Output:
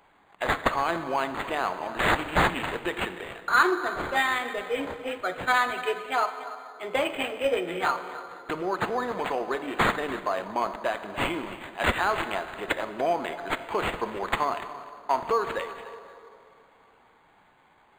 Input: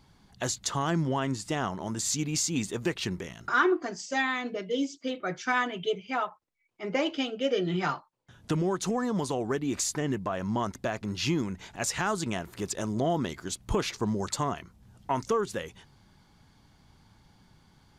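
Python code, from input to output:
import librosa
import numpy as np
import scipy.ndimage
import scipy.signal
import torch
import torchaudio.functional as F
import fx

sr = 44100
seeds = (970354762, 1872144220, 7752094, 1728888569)

y = scipy.signal.sosfilt(scipy.signal.butter(2, 570.0, 'highpass', fs=sr, output='sos'), x)
y = fx.high_shelf(y, sr, hz=6500.0, db=7.0)
y = y + 10.0 ** (-16.0 / 20.0) * np.pad(y, (int(290 * sr / 1000.0), 0))[:len(y)]
y = fx.rev_plate(y, sr, seeds[0], rt60_s=2.8, hf_ratio=0.5, predelay_ms=0, drr_db=9.0)
y = np.interp(np.arange(len(y)), np.arange(len(y))[::8], y[::8])
y = y * librosa.db_to_amplitude(6.0)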